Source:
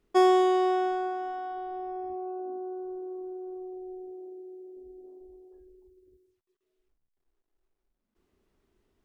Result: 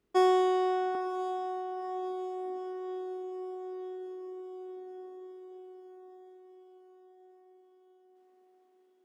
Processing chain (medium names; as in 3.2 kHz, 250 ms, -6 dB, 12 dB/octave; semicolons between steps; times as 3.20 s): high-pass 44 Hz 24 dB/octave, from 0.95 s 260 Hz; echo that smears into a reverb 971 ms, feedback 59%, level -13 dB; trim -3.5 dB